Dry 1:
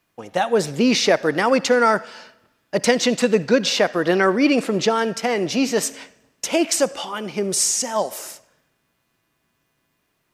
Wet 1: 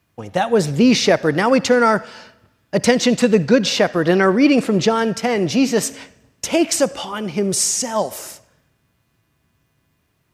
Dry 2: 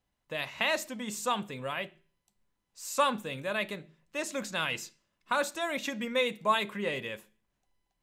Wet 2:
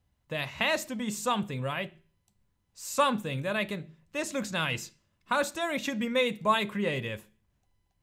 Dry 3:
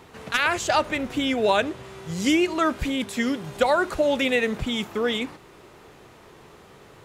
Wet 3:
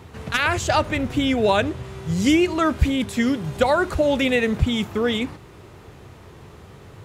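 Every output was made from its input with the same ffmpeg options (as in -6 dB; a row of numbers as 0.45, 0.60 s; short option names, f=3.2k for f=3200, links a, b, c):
-af "equalizer=f=83:t=o:w=1.9:g=14.5,volume=1dB"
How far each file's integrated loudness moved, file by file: +2.5, +2.0, +2.5 LU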